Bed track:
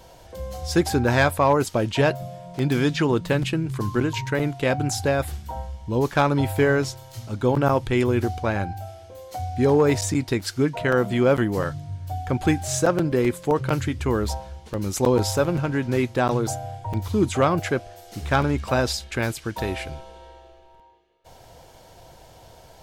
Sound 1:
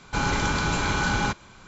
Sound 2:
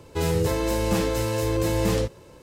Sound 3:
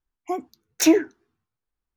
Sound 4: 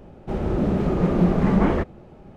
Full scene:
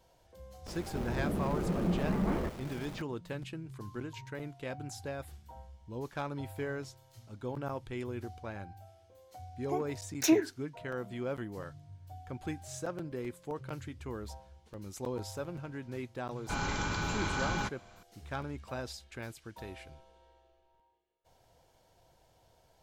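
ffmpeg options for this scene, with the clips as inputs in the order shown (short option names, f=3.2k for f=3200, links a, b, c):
-filter_complex "[0:a]volume=-18dB[a];[4:a]aeval=exprs='val(0)+0.5*0.0422*sgn(val(0))':c=same,atrim=end=2.36,asetpts=PTS-STARTPTS,volume=-13.5dB,afade=t=in:d=0.004:c=hsin,afade=t=out:st=2.356:d=0.004:c=hsin,adelay=660[b];[3:a]atrim=end=1.96,asetpts=PTS-STARTPTS,volume=-9dB,afade=t=in:d=0.004:c=hsin,afade=t=out:st=1.956:d=0.004:c=hsin,adelay=9420[c];[1:a]atrim=end=1.67,asetpts=PTS-STARTPTS,volume=-9.5dB,afade=t=in:d=0.004:c=hsin,afade=t=out:st=1.666:d=0.004:c=hsin,adelay=721476S[d];[a][b][c][d]amix=inputs=4:normalize=0"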